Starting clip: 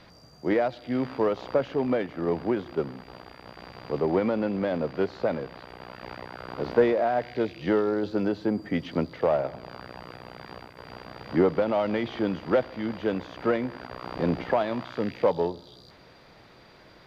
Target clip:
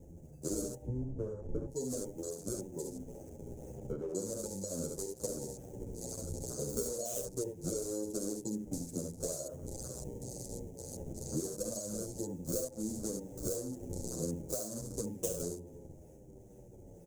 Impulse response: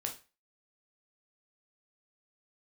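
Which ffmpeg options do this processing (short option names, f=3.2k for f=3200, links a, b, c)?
-filter_complex "[0:a]acrusher=samples=28:mix=1:aa=0.000001:lfo=1:lforange=44.8:lforate=2.1,asettb=1/sr,asplit=3[a][b][c];[a]atrim=end=0.814[d];[b]atrim=start=0.81:end=1.67,asetpts=PTS-STARTPTS,afade=t=in:d=0.004:c=qsin,afade=t=out:st=0.856:d=0.004:c=qsin,aemphasis=mode=reproduction:type=riaa[e];[c]atrim=start=1.666[f];[d][e]acrossfade=d=0.004:c1=hsin:c2=qsin[g];[g][f]acrossfade=d=0.004:c1=qsin:c2=hsin,aecho=1:1:47|70:0.335|0.473,asettb=1/sr,asplit=3[h][i][j];[h]atrim=end=3.754[k];[i]atrim=start=3.75:end=4.15,asetpts=PTS-STARTPTS,afade=t=in:d=0.004:c=qsin,afade=t=out:st=0.396:d=0.004:c=qsin,acrossover=split=3900[l][m];[m]acompressor=threshold=-51dB:ratio=4:attack=1:release=60[n];[l][n]amix=inputs=2:normalize=0[o];[j]atrim=start=4.146[p];[k][o]acrossfade=d=0.004:c1=hsin:c2=qsin[q];[q][p]acrossfade=d=0.004:c1=qsin:c2=hsin,asettb=1/sr,asplit=3[r][s][t];[r]atrim=end=10.004[u];[s]atrim=start=10:end=10.77,asetpts=PTS-STARTPTS,afade=t=in:d=0.004:c=qsin,afade=t=out:st=0.766:d=0.004:c=qsin,asuperstop=centerf=1400:order=4:qfactor=3[v];[t]atrim=start=10.766[w];[u][v]acrossfade=d=0.004:c1=hsin:c2=qsin[x];[x][w]acrossfade=d=0.004:c1=qsin:c2=hsin,acompressor=threshold=-33dB:ratio=12,firequalizer=gain_entry='entry(100,0);entry(220,-5);entry(530,-3);entry(840,-23);entry(1400,-16);entry(2500,-13);entry(4400,-16);entry(6400,11);entry(9500,6)':delay=0.05:min_phase=1,afwtdn=0.00251,asplit=2[y][z];[z]adelay=9,afreqshift=-0.64[aa];[y][aa]amix=inputs=2:normalize=1,volume=5.5dB"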